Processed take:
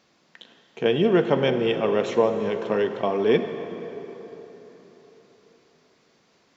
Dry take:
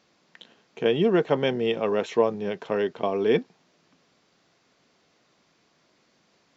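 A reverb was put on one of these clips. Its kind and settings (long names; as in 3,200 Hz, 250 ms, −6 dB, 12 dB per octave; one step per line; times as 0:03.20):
dense smooth reverb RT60 4.1 s, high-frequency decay 0.65×, DRR 7 dB
level +1.5 dB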